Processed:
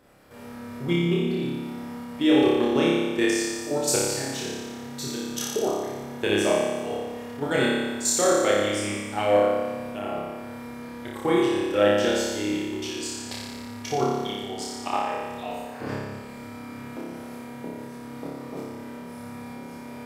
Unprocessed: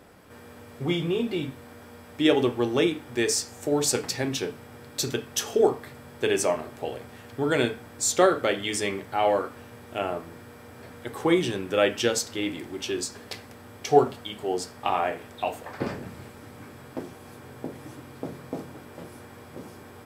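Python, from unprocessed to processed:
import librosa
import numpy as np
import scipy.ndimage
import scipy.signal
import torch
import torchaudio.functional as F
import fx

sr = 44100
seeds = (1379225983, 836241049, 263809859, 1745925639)

y = fx.level_steps(x, sr, step_db=12)
y = fx.room_flutter(y, sr, wall_m=5.0, rt60_s=1.4)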